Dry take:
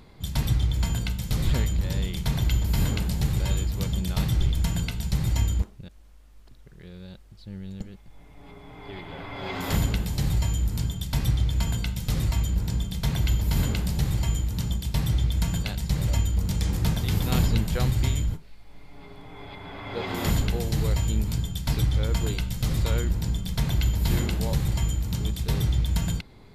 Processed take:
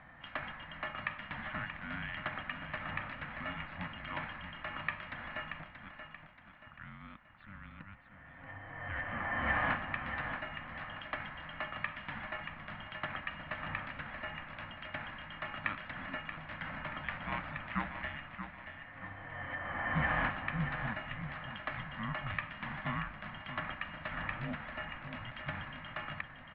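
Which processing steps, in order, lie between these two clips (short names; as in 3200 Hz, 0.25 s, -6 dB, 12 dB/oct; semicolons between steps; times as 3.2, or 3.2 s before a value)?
notches 60/120/180/240/300/360/420 Hz; compressor, threshold -27 dBFS, peak gain reduction 9.5 dB; fixed phaser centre 300 Hz, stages 4; feedback echo 0.63 s, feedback 42%, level -8.5 dB; mistuned SSB -310 Hz 510–2400 Hz; gain +10 dB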